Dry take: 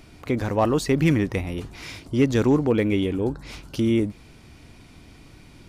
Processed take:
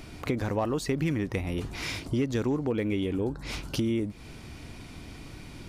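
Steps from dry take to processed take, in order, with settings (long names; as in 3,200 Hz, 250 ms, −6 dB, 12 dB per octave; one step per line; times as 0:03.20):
downward compressor 4 to 1, threshold −31 dBFS, peak gain reduction 14 dB
level +4 dB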